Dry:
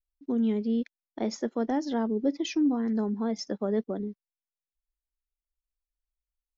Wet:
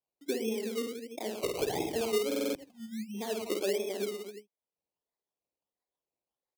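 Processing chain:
LFO wah 5.9 Hz 400–1,100 Hz, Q 3
0:01.43–0:01.96: linear-prediction vocoder at 8 kHz whisper
0:02.38–0:03.14: time-frequency box erased 220–2,300 Hz
dynamic equaliser 380 Hz, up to +7 dB, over −50 dBFS, Q 2.3
on a send: reverse bouncing-ball delay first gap 50 ms, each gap 1.15×, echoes 5
on the sum: sample-and-hold swept by an LFO 21×, swing 60% 1.5 Hz
high-pass filter 79 Hz
parametric band 1,400 Hz −13 dB 0.78 octaves
in parallel at −1 dB: brickwall limiter −43.5 dBFS, peak gain reduction 25.5 dB
on the sum: buffer that repeats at 0:02.27, samples 2,048, times 5
multiband upward and downward compressor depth 40%

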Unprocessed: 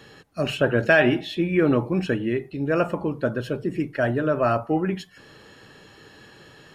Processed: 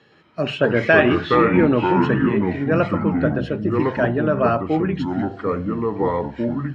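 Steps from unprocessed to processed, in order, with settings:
noise gate −40 dBFS, range −9 dB
delay with pitch and tempo change per echo 120 ms, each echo −5 semitones, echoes 2
band-pass filter 110–4,100 Hz
level +2.5 dB

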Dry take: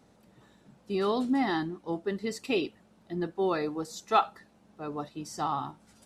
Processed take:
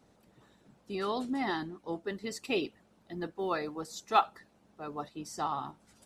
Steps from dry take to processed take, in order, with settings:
harmonic and percussive parts rebalanced harmonic −7 dB
0:02.09–0:05.13: floating-point word with a short mantissa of 6 bits

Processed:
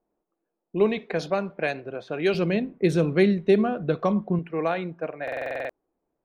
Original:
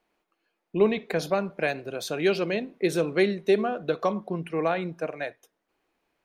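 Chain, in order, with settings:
low-pass that shuts in the quiet parts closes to 650 Hz, open at −19.5 dBFS
0:02.34–0:04.39: bass and treble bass +12 dB, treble −3 dB
buffer that repeats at 0:05.23, samples 2,048, times 9

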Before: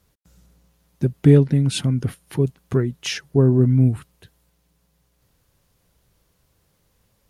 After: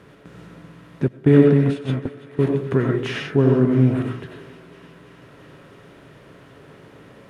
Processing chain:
compressor on every frequency bin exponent 0.6
high-pass filter 170 Hz 6 dB per octave
comb and all-pass reverb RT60 0.46 s, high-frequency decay 0.4×, pre-delay 55 ms, DRR 0 dB
0:01.08–0:02.39: noise gate −16 dBFS, range −18 dB
drawn EQ curve 410 Hz 0 dB, 1,700 Hz +3 dB, 5,500 Hz −17 dB
on a send: feedback echo with a high-pass in the loop 334 ms, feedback 78%, high-pass 360 Hz, level −18 dB
on the sum: level −1 dB

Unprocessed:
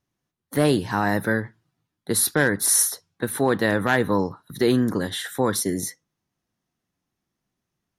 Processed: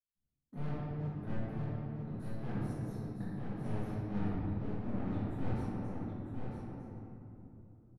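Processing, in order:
RIAA equalisation playback
downward expander −39 dBFS
tilt shelving filter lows +5 dB, about 820 Hz
brickwall limiter −7 dBFS, peak gain reduction 8.5 dB
soft clipping −24.5 dBFS, distortion −5 dB
gate pattern "..xx.....xxx.x.." 198 BPM −24 dB
gate with flip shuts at −38 dBFS, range −34 dB
on a send: single-tap delay 954 ms −5 dB
on the sum: rectangular room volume 170 cubic metres, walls hard, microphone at 1.4 metres
one half of a high-frequency compander decoder only
level +4 dB

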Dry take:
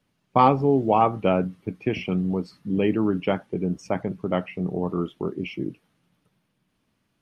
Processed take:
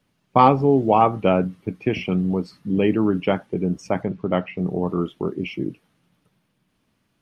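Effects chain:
0:04.05–0:04.58: low-pass filter 4,800 Hz 12 dB per octave
level +3 dB

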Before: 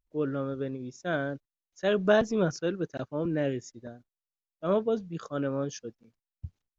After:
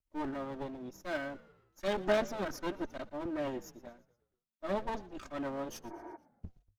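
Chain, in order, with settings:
lower of the sound and its delayed copy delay 3.2 ms
healed spectral selection 0:05.93–0:06.14, 280–2,400 Hz before
echo with shifted repeats 117 ms, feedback 51%, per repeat −56 Hz, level −20 dB
level −4 dB

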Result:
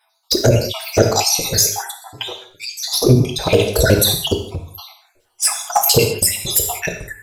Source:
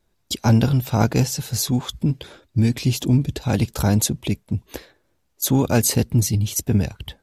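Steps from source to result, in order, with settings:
time-frequency cells dropped at random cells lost 71%
low shelf with overshoot 320 Hz −7.5 dB, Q 3
flanger swept by the level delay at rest 10.7 ms, full sweep at −19 dBFS
reverb whose tail is shaped and stops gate 230 ms falling, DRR 3.5 dB
boost into a limiter +19.5 dB
level −1 dB

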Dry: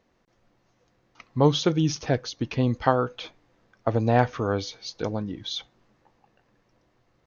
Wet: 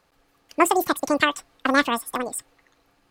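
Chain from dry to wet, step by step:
wrong playback speed 33 rpm record played at 78 rpm
level +2.5 dB

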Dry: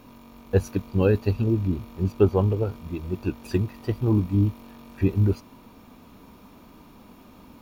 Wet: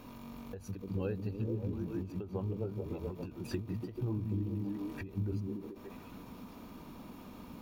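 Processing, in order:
echo through a band-pass that steps 144 ms, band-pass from 150 Hz, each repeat 0.7 octaves, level −0.5 dB
downward compressor 4 to 1, threshold −33 dBFS, peak gain reduction 17 dB
every ending faded ahead of time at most 120 dB per second
level −1.5 dB

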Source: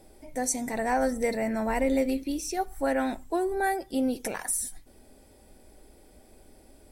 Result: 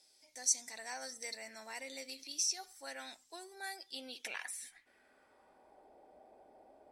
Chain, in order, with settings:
0:02.16–0:02.73: transient designer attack +1 dB, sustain +6 dB
band-pass filter sweep 5,200 Hz → 750 Hz, 0:03.69–0:05.91
level +4 dB

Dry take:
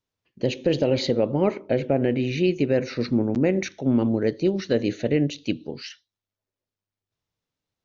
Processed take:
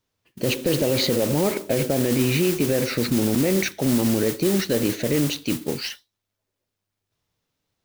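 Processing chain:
noise that follows the level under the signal 11 dB
brickwall limiter −18.5 dBFS, peak gain reduction 11 dB
level +7.5 dB

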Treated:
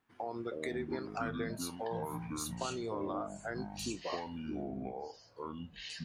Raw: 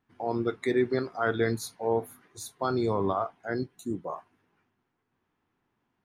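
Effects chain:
low-shelf EQ 320 Hz −8.5 dB
downward compressor, threshold −38 dBFS, peak gain reduction 14 dB
delay with pitch and tempo change per echo 217 ms, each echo −7 semitones, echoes 2
level +1.5 dB

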